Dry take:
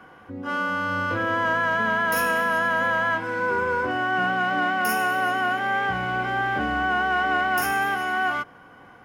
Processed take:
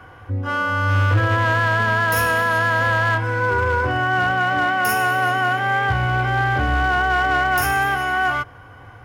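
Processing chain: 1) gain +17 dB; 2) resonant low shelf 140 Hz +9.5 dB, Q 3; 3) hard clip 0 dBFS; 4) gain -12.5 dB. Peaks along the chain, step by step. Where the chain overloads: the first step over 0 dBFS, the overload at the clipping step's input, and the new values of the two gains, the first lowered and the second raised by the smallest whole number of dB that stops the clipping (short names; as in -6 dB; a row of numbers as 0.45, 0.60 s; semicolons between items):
+5.0, +7.5, 0.0, -12.5 dBFS; step 1, 7.5 dB; step 1 +9 dB, step 4 -4.5 dB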